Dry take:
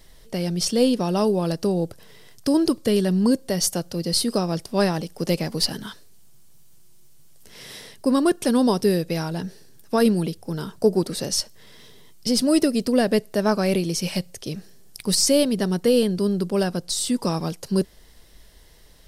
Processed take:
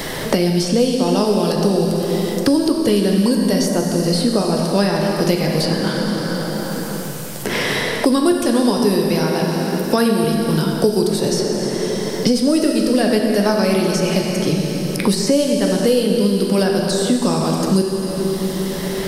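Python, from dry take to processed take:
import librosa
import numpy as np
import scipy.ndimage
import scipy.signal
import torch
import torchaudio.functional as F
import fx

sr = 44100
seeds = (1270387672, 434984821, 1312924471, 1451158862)

y = fx.bessel_highpass(x, sr, hz=180.0, order=2, at=(9.11, 10.24))
y = fx.rev_plate(y, sr, seeds[0], rt60_s=2.4, hf_ratio=0.75, predelay_ms=0, drr_db=0.0)
y = fx.band_squash(y, sr, depth_pct=100)
y = F.gain(torch.from_numpy(y), 2.0).numpy()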